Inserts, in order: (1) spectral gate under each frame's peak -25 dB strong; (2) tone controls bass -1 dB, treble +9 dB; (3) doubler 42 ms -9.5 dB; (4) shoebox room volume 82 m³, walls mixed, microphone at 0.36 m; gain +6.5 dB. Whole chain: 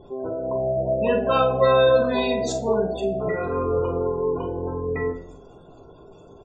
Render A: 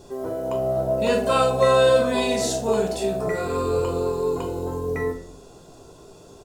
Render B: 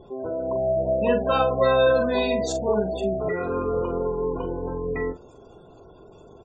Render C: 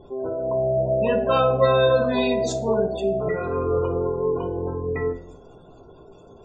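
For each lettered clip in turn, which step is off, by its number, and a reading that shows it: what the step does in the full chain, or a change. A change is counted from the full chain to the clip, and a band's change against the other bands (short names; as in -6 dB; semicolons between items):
1, 4 kHz band +3.0 dB; 4, echo-to-direct -6.5 dB to none; 3, 125 Hz band +2.5 dB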